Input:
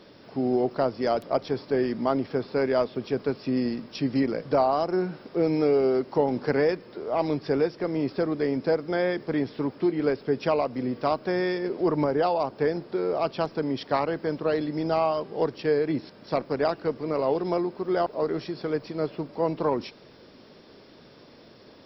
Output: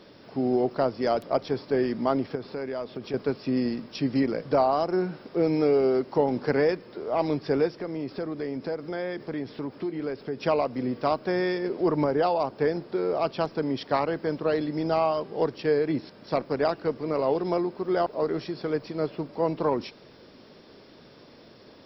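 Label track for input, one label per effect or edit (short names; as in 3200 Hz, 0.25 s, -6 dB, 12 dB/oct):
2.350000	3.140000	compressor 3:1, threshold -31 dBFS
7.770000	10.410000	compressor 2:1, threshold -32 dBFS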